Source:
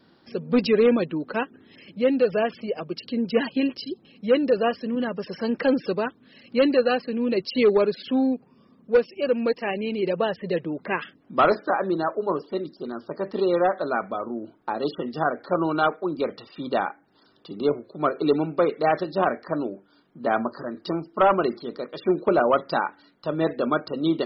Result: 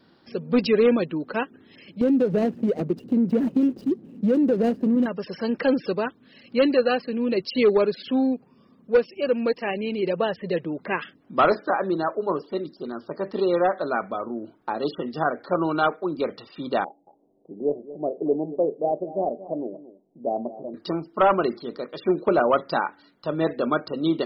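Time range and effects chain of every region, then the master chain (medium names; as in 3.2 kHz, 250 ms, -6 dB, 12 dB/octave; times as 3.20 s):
2.01–5.06 s: median filter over 41 samples + peaking EQ 240 Hz +13.5 dB 2.5 oct + compression 4:1, threshold -18 dBFS
16.84–20.74 s: steep low-pass 750 Hz 48 dB/octave + peaking EQ 67 Hz -12 dB 2.8 oct + delay 228 ms -15.5 dB
whole clip: none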